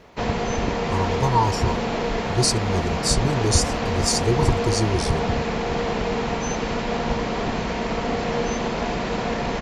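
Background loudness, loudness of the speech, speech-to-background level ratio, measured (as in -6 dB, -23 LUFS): -25.0 LUFS, -23.5 LUFS, 1.5 dB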